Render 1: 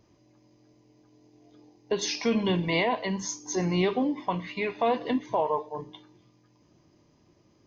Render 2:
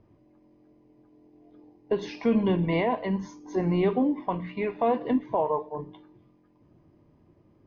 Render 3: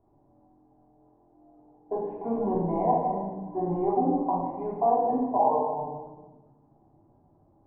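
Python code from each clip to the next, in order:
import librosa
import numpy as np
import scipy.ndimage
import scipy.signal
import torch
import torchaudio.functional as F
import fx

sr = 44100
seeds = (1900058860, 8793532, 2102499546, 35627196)

y1 = scipy.signal.sosfilt(scipy.signal.bessel(2, 2000.0, 'lowpass', norm='mag', fs=sr, output='sos'), x)
y1 = fx.tilt_eq(y1, sr, slope=-1.5)
y1 = fx.hum_notches(y1, sr, base_hz=60, count=3)
y2 = fx.quant_companded(y1, sr, bits=6)
y2 = fx.ladder_lowpass(y2, sr, hz=870.0, resonance_pct=80)
y2 = fx.room_shoebox(y2, sr, seeds[0], volume_m3=800.0, walls='mixed', distance_m=3.2)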